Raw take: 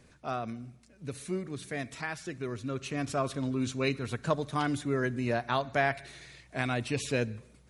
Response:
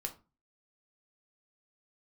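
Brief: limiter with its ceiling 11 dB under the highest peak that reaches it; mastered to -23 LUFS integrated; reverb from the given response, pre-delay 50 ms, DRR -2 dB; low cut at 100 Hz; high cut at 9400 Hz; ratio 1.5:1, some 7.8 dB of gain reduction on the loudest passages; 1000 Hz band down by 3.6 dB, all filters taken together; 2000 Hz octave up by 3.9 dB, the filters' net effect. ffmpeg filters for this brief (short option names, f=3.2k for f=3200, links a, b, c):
-filter_complex "[0:a]highpass=100,lowpass=9.4k,equalizer=f=1k:t=o:g=-7.5,equalizer=f=2k:t=o:g=7.5,acompressor=threshold=-44dB:ratio=1.5,alimiter=level_in=6dB:limit=-24dB:level=0:latency=1,volume=-6dB,asplit=2[a][b];[1:a]atrim=start_sample=2205,adelay=50[c];[b][c]afir=irnorm=-1:irlink=0,volume=2.5dB[d];[a][d]amix=inputs=2:normalize=0,volume=14.5dB"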